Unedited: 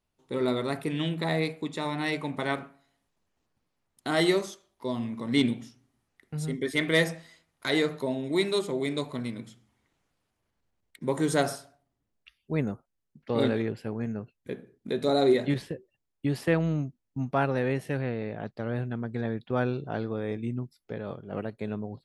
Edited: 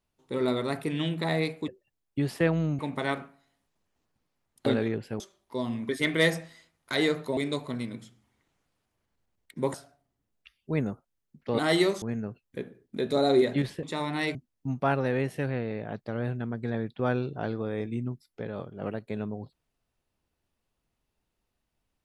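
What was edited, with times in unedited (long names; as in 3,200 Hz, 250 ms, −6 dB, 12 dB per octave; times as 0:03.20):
0:01.68–0:02.20: swap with 0:15.75–0:16.86
0:04.07–0:04.50: swap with 0:13.40–0:13.94
0:05.19–0:06.63: remove
0:08.11–0:08.82: remove
0:11.19–0:11.55: remove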